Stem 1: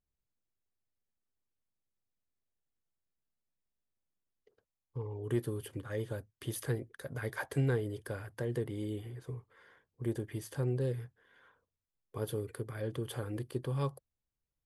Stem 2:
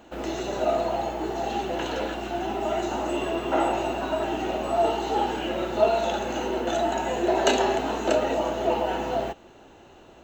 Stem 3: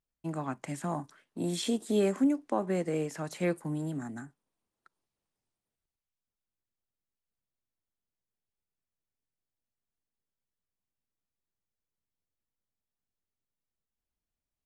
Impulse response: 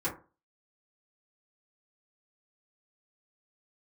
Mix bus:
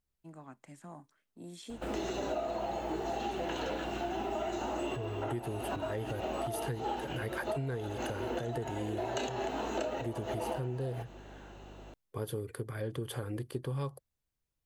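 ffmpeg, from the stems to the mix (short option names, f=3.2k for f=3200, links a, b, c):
-filter_complex "[0:a]volume=2.5dB,asplit=2[a][b];[1:a]aeval=exprs='val(0)+0.00355*(sin(2*PI*50*n/s)+sin(2*PI*2*50*n/s)/2+sin(2*PI*3*50*n/s)/3+sin(2*PI*4*50*n/s)/4+sin(2*PI*5*50*n/s)/5)':c=same,adelay=1700,volume=-2.5dB[c];[2:a]volume=-15dB[d];[b]apad=whole_len=526481[e];[c][e]sidechaincompress=threshold=-44dB:ratio=4:attack=8:release=102[f];[a][f][d]amix=inputs=3:normalize=0,acompressor=threshold=-32dB:ratio=6"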